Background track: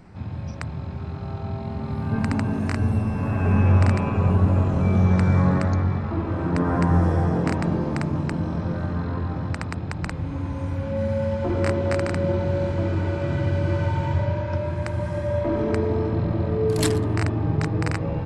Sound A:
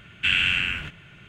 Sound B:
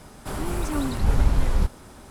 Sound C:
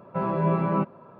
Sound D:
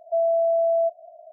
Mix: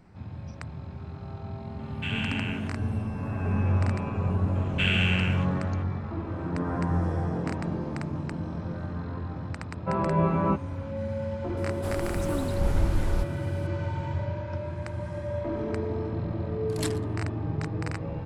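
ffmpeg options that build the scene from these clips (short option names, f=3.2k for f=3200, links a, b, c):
-filter_complex "[1:a]asplit=2[a][b];[0:a]volume=-7.5dB[c];[a]alimiter=limit=-14dB:level=0:latency=1:release=21,atrim=end=1.28,asetpts=PTS-STARTPTS,volume=-9.5dB,afade=t=in:d=0.004:c=hsin,afade=t=out:st=1.276:d=0.004:c=hsin,adelay=1790[d];[b]atrim=end=1.28,asetpts=PTS-STARTPTS,volume=-5.5dB,afade=t=in:d=0.004:c=hsin,afade=t=out:st=1.276:d=0.004:c=hsin,adelay=4550[e];[3:a]atrim=end=1.19,asetpts=PTS-STARTPTS,volume=-0.5dB,afade=t=in:d=0.004:c=hsin,afade=t=out:st=1.186:d=0.004:c=hsin,adelay=9720[f];[2:a]atrim=end=2.1,asetpts=PTS-STARTPTS,volume=-5.5dB,afade=t=in:d=0.004:c=hsin,afade=t=out:st=2.096:d=0.004:c=hsin,adelay=11570[g];[c][d][e][f][g]amix=inputs=5:normalize=0"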